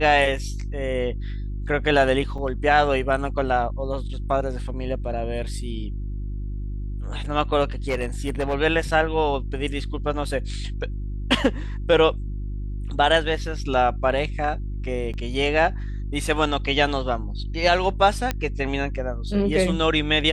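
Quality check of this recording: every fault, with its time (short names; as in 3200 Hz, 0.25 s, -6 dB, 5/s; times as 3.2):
hum 50 Hz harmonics 7 -29 dBFS
2.38 gap 4.9 ms
7.88–8.55 clipped -18.5 dBFS
9.59 gap 4.1 ms
15.13–15.14 gap 7.6 ms
18.31 pop -9 dBFS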